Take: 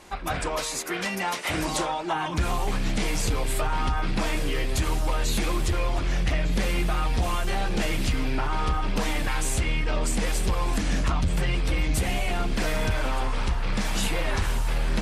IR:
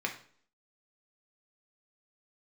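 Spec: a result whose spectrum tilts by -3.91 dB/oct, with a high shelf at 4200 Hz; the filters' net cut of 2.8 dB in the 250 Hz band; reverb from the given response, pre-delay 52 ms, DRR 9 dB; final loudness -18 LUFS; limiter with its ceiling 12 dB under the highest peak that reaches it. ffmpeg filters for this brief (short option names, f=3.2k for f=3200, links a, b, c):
-filter_complex "[0:a]equalizer=f=250:t=o:g=-4,highshelf=f=4.2k:g=8.5,alimiter=limit=-22.5dB:level=0:latency=1,asplit=2[a][b];[1:a]atrim=start_sample=2205,adelay=52[c];[b][c]afir=irnorm=-1:irlink=0,volume=-14.5dB[d];[a][d]amix=inputs=2:normalize=0,volume=13.5dB"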